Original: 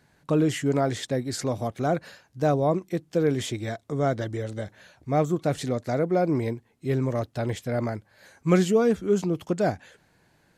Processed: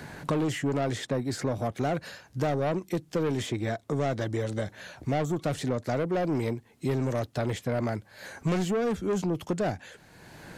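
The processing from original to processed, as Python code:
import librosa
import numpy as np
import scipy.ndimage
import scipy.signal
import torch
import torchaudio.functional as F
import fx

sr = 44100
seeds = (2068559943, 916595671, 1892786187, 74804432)

y = 10.0 ** (-23.0 / 20.0) * np.tanh(x / 10.0 ** (-23.0 / 20.0))
y = fx.band_squash(y, sr, depth_pct=70)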